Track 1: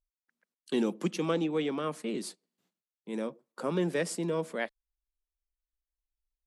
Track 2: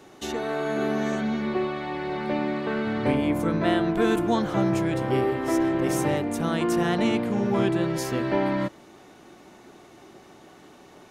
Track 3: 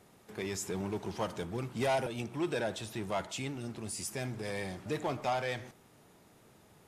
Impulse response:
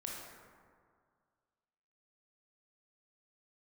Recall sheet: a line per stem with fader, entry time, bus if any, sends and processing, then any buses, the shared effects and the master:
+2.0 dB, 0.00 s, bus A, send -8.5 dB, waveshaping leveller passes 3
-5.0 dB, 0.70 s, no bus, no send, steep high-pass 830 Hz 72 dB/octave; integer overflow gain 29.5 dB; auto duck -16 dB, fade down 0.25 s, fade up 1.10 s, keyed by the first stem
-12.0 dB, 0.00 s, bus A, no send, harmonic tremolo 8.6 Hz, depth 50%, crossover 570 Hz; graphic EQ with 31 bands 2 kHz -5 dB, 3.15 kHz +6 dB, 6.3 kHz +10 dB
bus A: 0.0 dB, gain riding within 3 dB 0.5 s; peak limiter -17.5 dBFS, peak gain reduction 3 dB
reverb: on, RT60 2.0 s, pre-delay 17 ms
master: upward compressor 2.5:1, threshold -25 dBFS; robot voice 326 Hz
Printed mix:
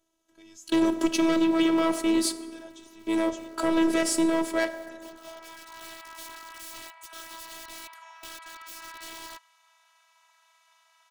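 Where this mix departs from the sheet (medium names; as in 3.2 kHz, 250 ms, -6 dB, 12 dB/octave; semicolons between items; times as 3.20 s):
stem 3: missing harmonic tremolo 8.6 Hz, depth 50%, crossover 570 Hz; master: missing upward compressor 2.5:1, threshold -25 dBFS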